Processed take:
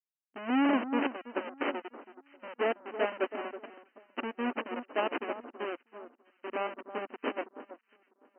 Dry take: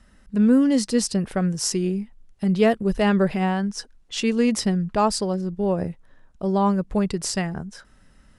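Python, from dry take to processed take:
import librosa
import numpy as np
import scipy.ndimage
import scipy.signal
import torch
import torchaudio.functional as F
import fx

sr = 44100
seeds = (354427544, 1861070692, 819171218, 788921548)

p1 = fx.dereverb_blind(x, sr, rt60_s=0.7)
p2 = fx.schmitt(p1, sr, flips_db=-21.5)
p3 = fx.brickwall_bandpass(p2, sr, low_hz=230.0, high_hz=3100.0)
p4 = p3 + fx.echo_alternate(p3, sr, ms=325, hz=1400.0, feedback_pct=68, wet_db=-4.5, dry=0)
y = fx.upward_expand(p4, sr, threshold_db=-42.0, expansion=2.5)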